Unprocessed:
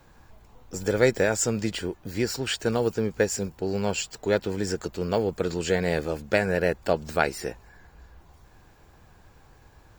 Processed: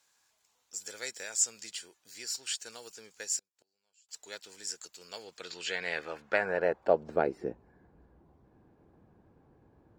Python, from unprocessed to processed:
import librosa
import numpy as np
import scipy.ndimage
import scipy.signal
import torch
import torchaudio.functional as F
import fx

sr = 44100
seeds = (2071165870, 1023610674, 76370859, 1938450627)

y = fx.gate_flip(x, sr, shuts_db=-28.0, range_db=-33, at=(3.39, 4.09))
y = fx.filter_sweep_bandpass(y, sr, from_hz=7500.0, to_hz=270.0, start_s=5.02, end_s=7.51, q=1.1)